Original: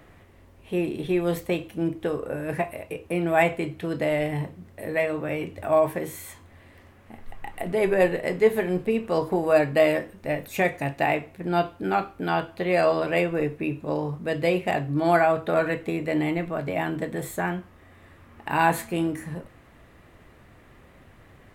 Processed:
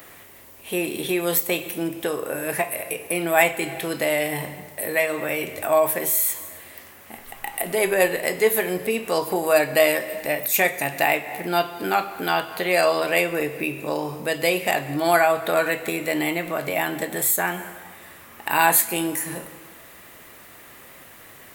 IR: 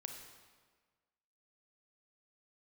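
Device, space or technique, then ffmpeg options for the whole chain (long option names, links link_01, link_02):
ducked reverb: -filter_complex "[0:a]aemphasis=mode=production:type=riaa,asplit=3[link_01][link_02][link_03];[1:a]atrim=start_sample=2205[link_04];[link_02][link_04]afir=irnorm=-1:irlink=0[link_05];[link_03]apad=whole_len=950230[link_06];[link_05][link_06]sidechaincompress=threshold=-32dB:ratio=8:attack=5.7:release=173,volume=2.5dB[link_07];[link_01][link_07]amix=inputs=2:normalize=0,volume=2dB"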